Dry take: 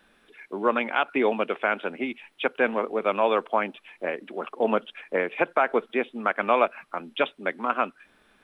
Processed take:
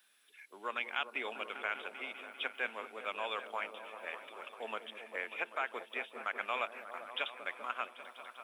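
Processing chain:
first difference
echo whose low-pass opens from repeat to repeat 197 ms, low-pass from 400 Hz, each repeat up 1 octave, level −6 dB
level +2 dB

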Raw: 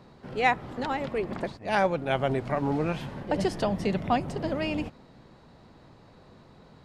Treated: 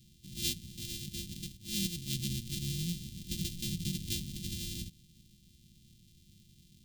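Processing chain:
samples sorted by size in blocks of 128 samples
elliptic band-stop filter 210–3,300 Hz, stop band 70 dB
level −2.5 dB

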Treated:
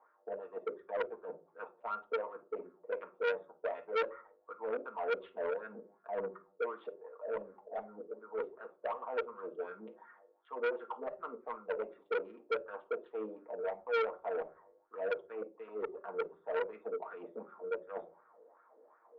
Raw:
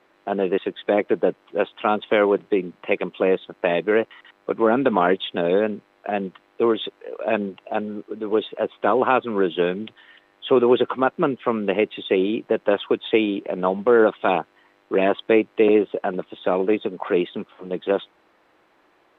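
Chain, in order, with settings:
adaptive Wiener filter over 15 samples
elliptic high-pass filter 170 Hz
high-shelf EQ 2,300 Hz +10.5 dB
reversed playback
downward compressor 5 to 1, threshold −34 dBFS, peak gain reduction 20.5 dB
reversed playback
LFO wah 2.7 Hz 440–1,400 Hz, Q 6
gain into a clipping stage and back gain 35 dB
high-frequency loss of the air 460 metres
convolution reverb RT60 0.30 s, pre-delay 4 ms, DRR 0 dB
saturating transformer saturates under 1,400 Hz
level +5 dB

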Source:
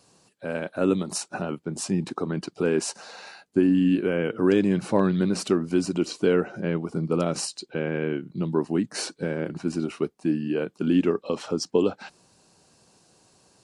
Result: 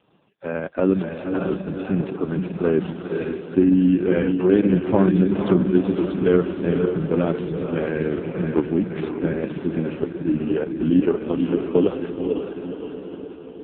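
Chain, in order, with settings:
feedback delay with all-pass diffusion 512 ms, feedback 54%, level −4 dB
level +4 dB
AMR narrowband 4.75 kbit/s 8,000 Hz

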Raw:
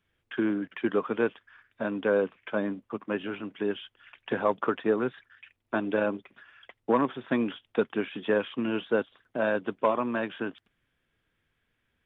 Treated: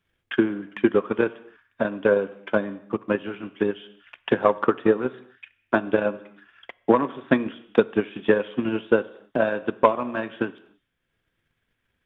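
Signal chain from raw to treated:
reverb whose tail is shaped and stops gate 310 ms falling, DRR 9.5 dB
transient designer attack +10 dB, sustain −3 dB

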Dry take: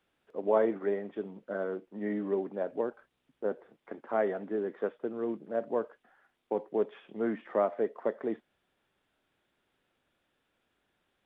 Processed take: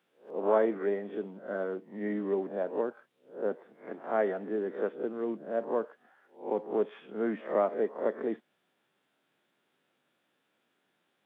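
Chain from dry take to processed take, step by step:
peak hold with a rise ahead of every peak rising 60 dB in 0.35 s
high-pass filter 140 Hz 24 dB per octave

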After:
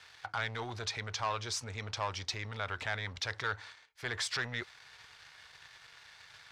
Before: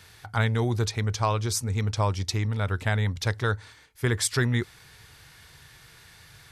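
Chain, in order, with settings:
leveller curve on the samples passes 2
brickwall limiter −19 dBFS, peak gain reduction 6.5 dB
three-way crossover with the lows and the highs turned down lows −16 dB, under 570 Hz, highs −22 dB, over 6,400 Hz
level −4.5 dB

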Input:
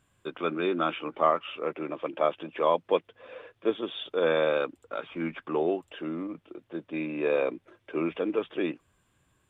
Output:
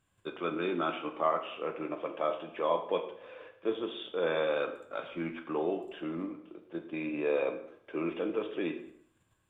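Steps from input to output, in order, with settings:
in parallel at +1 dB: output level in coarse steps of 17 dB
on the sum: dense smooth reverb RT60 0.67 s, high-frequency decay 0.85×, DRR 4.5 dB
level −8.5 dB

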